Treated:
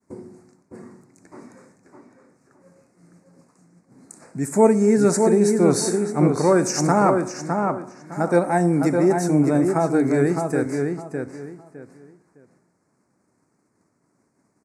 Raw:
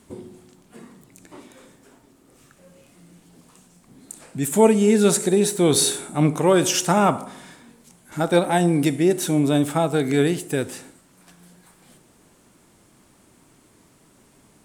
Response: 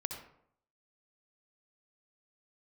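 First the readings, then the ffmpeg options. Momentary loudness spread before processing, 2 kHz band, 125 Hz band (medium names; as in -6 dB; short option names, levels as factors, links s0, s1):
11 LU, -1.0 dB, +0.5 dB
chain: -filter_complex "[0:a]highpass=100,lowpass=7000,agate=range=0.0224:threshold=0.00447:ratio=3:detection=peak,asuperstop=centerf=3200:order=4:qfactor=1.1,asplit=2[s0][s1];[s1]adelay=609,lowpass=f=3100:p=1,volume=0.596,asplit=2[s2][s3];[s3]adelay=609,lowpass=f=3100:p=1,volume=0.25,asplit=2[s4][s5];[s5]adelay=609,lowpass=f=3100:p=1,volume=0.25[s6];[s2][s4][s6]amix=inputs=3:normalize=0[s7];[s0][s7]amix=inputs=2:normalize=0"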